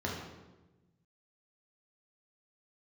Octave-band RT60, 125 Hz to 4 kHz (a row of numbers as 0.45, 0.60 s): 1.8, 1.5, 1.3, 1.0, 0.90, 0.80 s